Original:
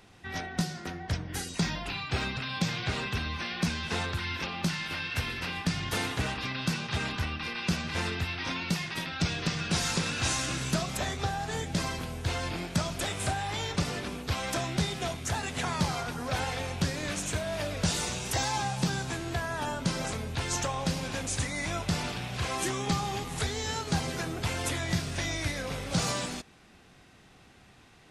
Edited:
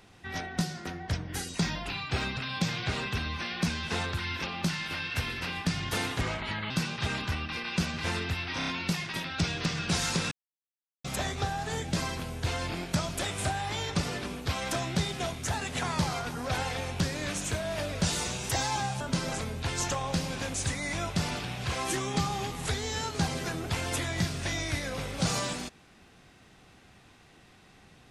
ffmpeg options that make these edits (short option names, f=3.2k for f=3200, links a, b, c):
-filter_complex "[0:a]asplit=9[a][b][c][d][e][f][g][h][i];[a]atrim=end=6.214[j];[b]atrim=start=6.21:end=6.61,asetpts=PTS-STARTPTS,asetrate=35721,aresample=44100[k];[c]atrim=start=6.606:end=8.522[l];[d]atrim=start=8.488:end=8.522[m];[e]atrim=start=8.488:end=8.522[n];[f]atrim=start=8.488:end=10.13,asetpts=PTS-STARTPTS,afade=t=out:st=1.638:d=0.004:c=hsin[o];[g]atrim=start=10.13:end=10.86,asetpts=PTS-STARTPTS,volume=0[p];[h]atrim=start=10.86:end=18.822,asetpts=PTS-STARTPTS,afade=t=in:d=0.004:c=hsin[q];[i]atrim=start=19.728[r];[j][k]acrossfade=d=0.004:c1=hsin:c2=hsin[s];[s][l]acrossfade=d=0.004:c1=hsin:c2=hsin[t];[t][m]acrossfade=d=0.004:c1=hsin:c2=hsin[u];[u][n]acrossfade=d=0.004:c1=hsin:c2=hsin[v];[o][p][q]concat=n=3:v=0:a=1[w];[v][w]acrossfade=d=0.004:c1=hsin:c2=hsin[x];[x][r]acrossfade=d=0.004:c1=hsin:c2=hsin"